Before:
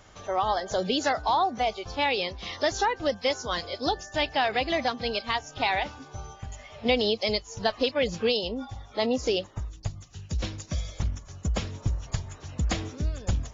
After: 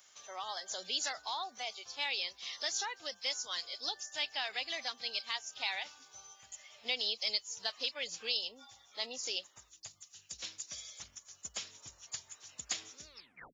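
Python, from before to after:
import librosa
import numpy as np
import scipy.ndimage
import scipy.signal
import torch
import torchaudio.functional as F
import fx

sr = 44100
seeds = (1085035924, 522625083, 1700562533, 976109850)

y = fx.tape_stop_end(x, sr, length_s=0.47)
y = np.diff(y, prepend=0.0)
y = y * 10.0 ** (1.5 / 20.0)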